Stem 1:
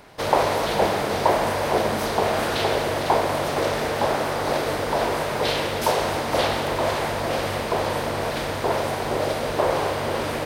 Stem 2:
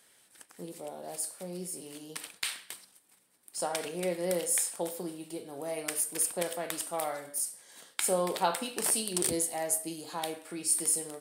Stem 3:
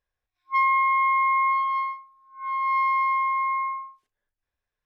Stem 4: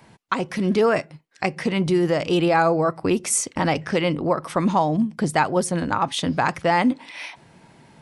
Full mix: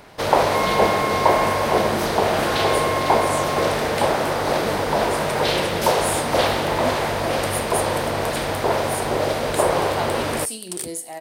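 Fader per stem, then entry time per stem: +2.5 dB, 0.0 dB, -5.0 dB, -12.5 dB; 0.00 s, 1.55 s, 0.00 s, 0.00 s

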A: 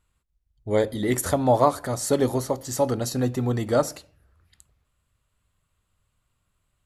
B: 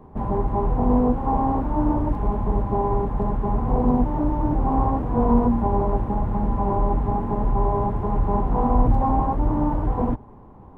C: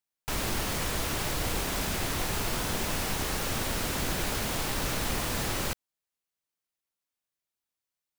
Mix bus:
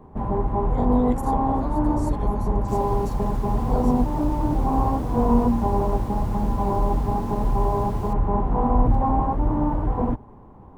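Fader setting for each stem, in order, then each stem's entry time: -17.5 dB, -0.5 dB, -18.5 dB; 0.00 s, 0.00 s, 2.40 s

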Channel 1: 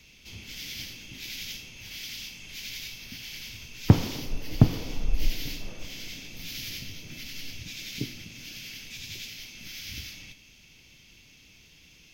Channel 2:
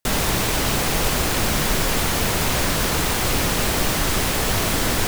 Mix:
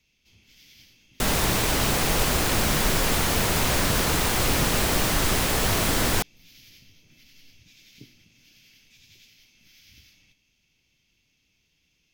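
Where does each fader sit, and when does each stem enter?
-15.0 dB, -2.0 dB; 0.00 s, 1.15 s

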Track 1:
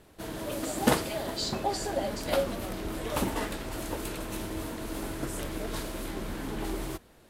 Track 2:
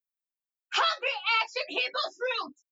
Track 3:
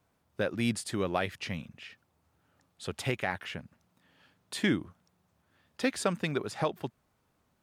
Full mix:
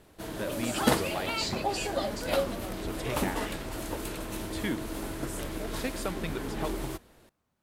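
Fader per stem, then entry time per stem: -0.5 dB, -9.5 dB, -5.5 dB; 0.00 s, 0.00 s, 0.00 s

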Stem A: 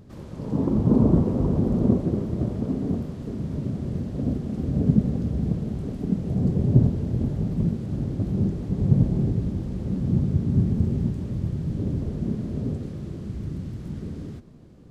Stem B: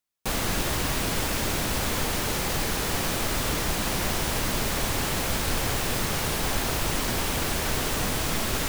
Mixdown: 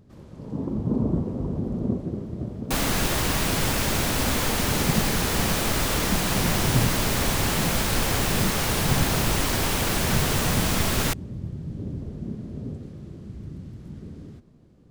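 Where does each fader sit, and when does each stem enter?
-6.0 dB, +2.5 dB; 0.00 s, 2.45 s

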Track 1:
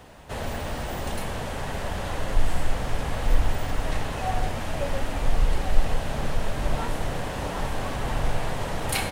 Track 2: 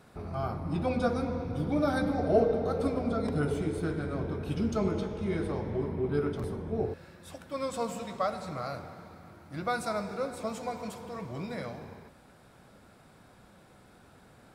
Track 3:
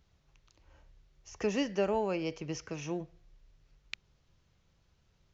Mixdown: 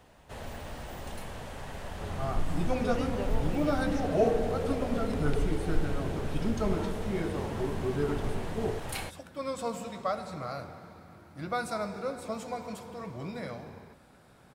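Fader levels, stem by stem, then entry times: -10.0 dB, -1.0 dB, -8.5 dB; 0.00 s, 1.85 s, 1.40 s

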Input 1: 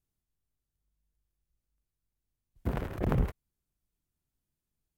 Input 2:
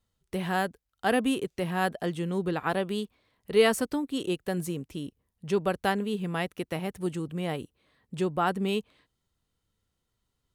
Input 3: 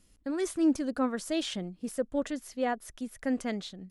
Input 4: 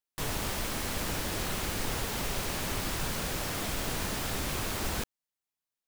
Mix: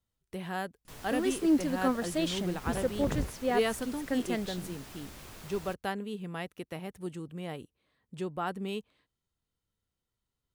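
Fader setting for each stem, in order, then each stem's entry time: -5.5 dB, -7.5 dB, 0.0 dB, -15.0 dB; 0.00 s, 0.00 s, 0.85 s, 0.70 s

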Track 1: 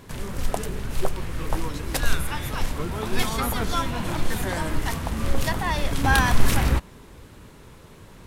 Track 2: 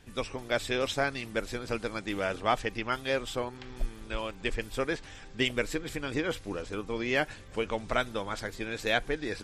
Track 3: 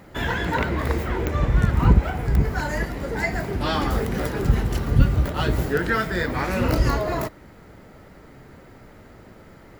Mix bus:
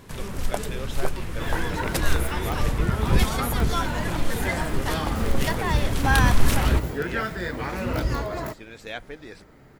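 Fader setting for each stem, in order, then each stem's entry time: -1.0 dB, -7.5 dB, -5.5 dB; 0.00 s, 0.00 s, 1.25 s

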